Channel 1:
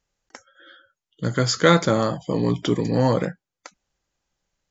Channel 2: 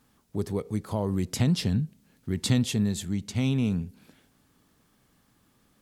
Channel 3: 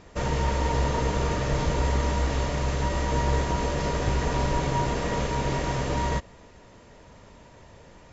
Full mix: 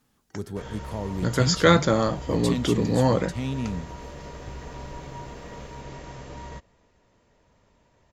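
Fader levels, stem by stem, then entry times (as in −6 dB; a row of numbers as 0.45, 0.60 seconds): −1.5, −4.0, −13.0 decibels; 0.00, 0.00, 0.40 seconds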